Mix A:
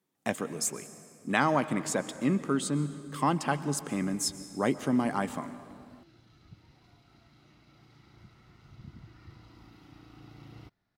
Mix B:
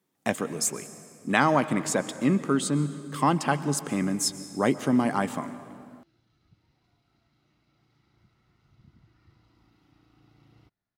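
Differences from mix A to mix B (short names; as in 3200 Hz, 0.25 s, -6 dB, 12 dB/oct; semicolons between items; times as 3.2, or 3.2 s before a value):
speech +4.0 dB; background -9.5 dB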